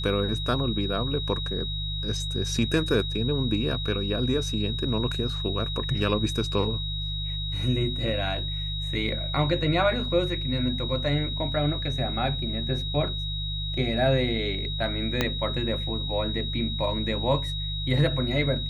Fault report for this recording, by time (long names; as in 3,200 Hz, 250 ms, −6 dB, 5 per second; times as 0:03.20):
mains hum 50 Hz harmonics 3 −32 dBFS
whistle 3,800 Hz −32 dBFS
0:15.21: click −8 dBFS